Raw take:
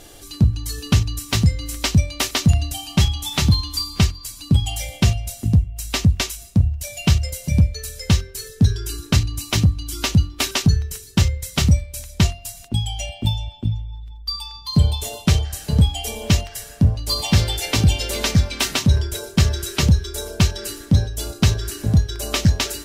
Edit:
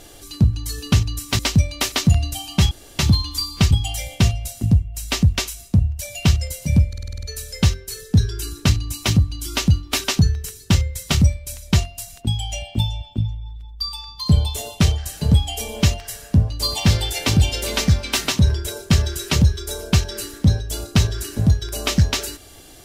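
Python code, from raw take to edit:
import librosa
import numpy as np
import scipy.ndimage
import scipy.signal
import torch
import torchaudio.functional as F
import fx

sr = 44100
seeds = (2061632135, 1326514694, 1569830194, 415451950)

y = fx.edit(x, sr, fx.cut(start_s=1.39, length_s=0.39),
    fx.room_tone_fill(start_s=3.1, length_s=0.28),
    fx.cut(start_s=4.1, length_s=0.43),
    fx.stutter(start_s=7.7, slice_s=0.05, count=8), tone=tone)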